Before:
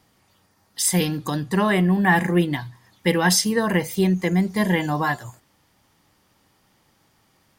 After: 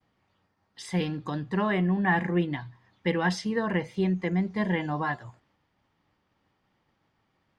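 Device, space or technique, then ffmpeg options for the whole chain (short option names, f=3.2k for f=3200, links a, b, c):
hearing-loss simulation: -af "lowpass=3.1k,agate=range=-33dB:threshold=-60dB:ratio=3:detection=peak,volume=-6.5dB"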